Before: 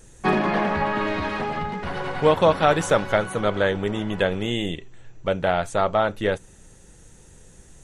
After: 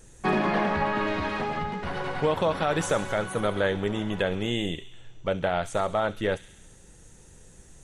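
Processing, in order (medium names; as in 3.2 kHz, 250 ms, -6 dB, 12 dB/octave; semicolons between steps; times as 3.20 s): peak limiter -12 dBFS, peak gain reduction 7.5 dB; on a send: feedback echo behind a high-pass 67 ms, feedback 67%, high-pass 3.2 kHz, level -10 dB; on the sum: trim -2.5 dB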